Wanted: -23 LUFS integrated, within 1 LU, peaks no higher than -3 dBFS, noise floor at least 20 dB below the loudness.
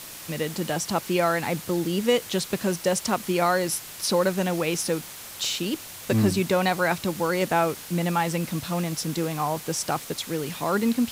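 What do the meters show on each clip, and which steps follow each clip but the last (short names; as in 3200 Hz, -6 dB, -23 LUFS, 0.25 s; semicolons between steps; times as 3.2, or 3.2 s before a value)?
noise floor -41 dBFS; noise floor target -46 dBFS; loudness -25.5 LUFS; peak -9.0 dBFS; loudness target -23.0 LUFS
-> noise print and reduce 6 dB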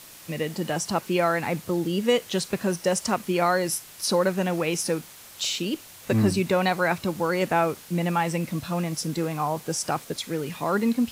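noise floor -46 dBFS; loudness -26.0 LUFS; peak -9.0 dBFS; loudness target -23.0 LUFS
-> gain +3 dB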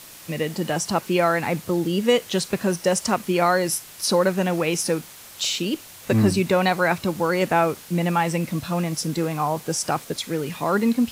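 loudness -23.0 LUFS; peak -6.0 dBFS; noise floor -43 dBFS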